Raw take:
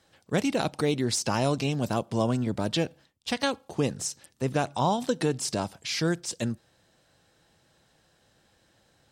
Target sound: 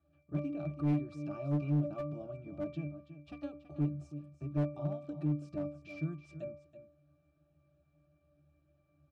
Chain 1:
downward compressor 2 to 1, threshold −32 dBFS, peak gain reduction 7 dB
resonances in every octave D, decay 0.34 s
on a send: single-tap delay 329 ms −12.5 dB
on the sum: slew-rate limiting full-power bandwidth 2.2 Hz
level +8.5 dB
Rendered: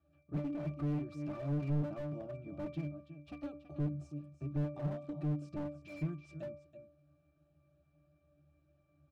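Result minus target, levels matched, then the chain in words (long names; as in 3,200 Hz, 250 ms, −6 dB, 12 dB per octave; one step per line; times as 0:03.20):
slew-rate limiting: distortion +12 dB
downward compressor 2 to 1, threshold −32 dBFS, peak gain reduction 7 dB
resonances in every octave D, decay 0.34 s
on a send: single-tap delay 329 ms −12.5 dB
on the sum: slew-rate limiting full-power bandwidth 5 Hz
level +8.5 dB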